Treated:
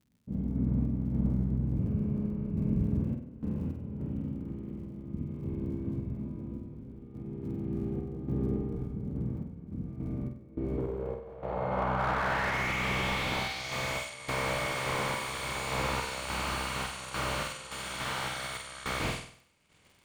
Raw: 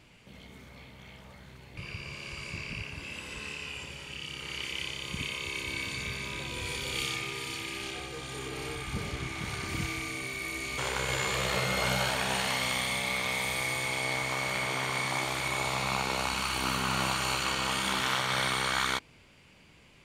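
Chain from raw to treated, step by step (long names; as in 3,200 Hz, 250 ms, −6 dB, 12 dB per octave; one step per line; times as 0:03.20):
compressor on every frequency bin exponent 0.6
noise gate −38 dBFS, range −41 dB
in parallel at +3 dB: compressor whose output falls as the input rises −41 dBFS, ratio −1
on the sum: brickwall limiter −20.5 dBFS, peak gain reduction 11 dB
low-pass filter sweep 240 Hz → 9,200 Hz, 0:10.38–0:14.13
surface crackle 58 per second −52 dBFS
sample-and-hold tremolo, depth 90%
on a send: flutter between parallel walls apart 8.2 metres, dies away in 0.53 s
on the sum: slew-rate limiting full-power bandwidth 43 Hz
level +2.5 dB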